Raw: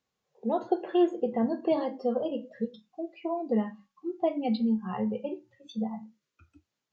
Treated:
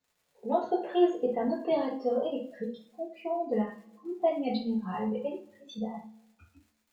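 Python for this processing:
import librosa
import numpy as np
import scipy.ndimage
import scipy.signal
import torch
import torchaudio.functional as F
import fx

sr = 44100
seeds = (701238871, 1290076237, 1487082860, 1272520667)

y = fx.dmg_crackle(x, sr, seeds[0], per_s=74.0, level_db=-52.0)
y = fx.rev_double_slope(y, sr, seeds[1], early_s=0.3, late_s=1.5, knee_db=-28, drr_db=-5.5)
y = y * librosa.db_to_amplitude(-5.5)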